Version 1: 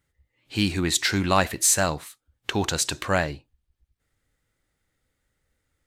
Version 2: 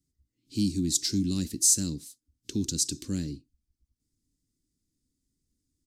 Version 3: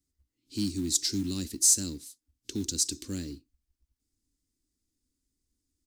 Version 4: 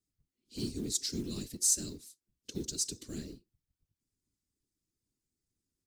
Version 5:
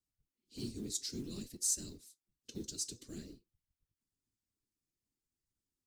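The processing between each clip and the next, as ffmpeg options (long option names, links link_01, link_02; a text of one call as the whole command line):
ffmpeg -i in.wav -filter_complex "[0:a]firequalizer=gain_entry='entry(110,0);entry(270,10);entry(660,-30);entry(5000,6);entry(14000,-1)':delay=0.05:min_phase=1,acrossover=split=260|3000[link_01][link_02][link_03];[link_02]acompressor=threshold=-29dB:ratio=6[link_04];[link_01][link_04][link_03]amix=inputs=3:normalize=0,volume=-5.5dB" out.wav
ffmpeg -i in.wav -af "acrusher=bits=7:mode=log:mix=0:aa=0.000001,equalizer=frequency=150:width_type=o:width=0.97:gain=-10.5" out.wav
ffmpeg -i in.wav -af "afftfilt=real='hypot(re,im)*cos(2*PI*random(0))':imag='hypot(re,im)*sin(2*PI*random(1))':win_size=512:overlap=0.75" out.wav
ffmpeg -i in.wav -af "flanger=delay=1:depth=8.8:regen=68:speed=0.55:shape=sinusoidal,volume=-1.5dB" out.wav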